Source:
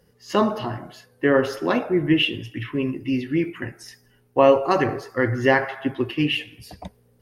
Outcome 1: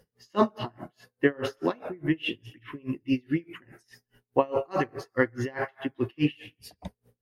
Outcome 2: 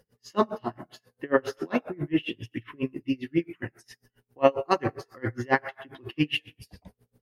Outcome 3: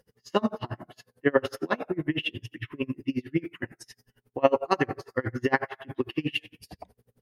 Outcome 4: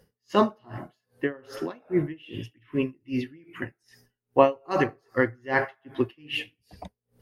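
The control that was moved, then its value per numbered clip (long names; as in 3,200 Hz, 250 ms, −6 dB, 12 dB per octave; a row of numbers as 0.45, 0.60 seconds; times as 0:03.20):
tremolo with a sine in dB, speed: 4.8, 7.4, 11, 2.5 Hertz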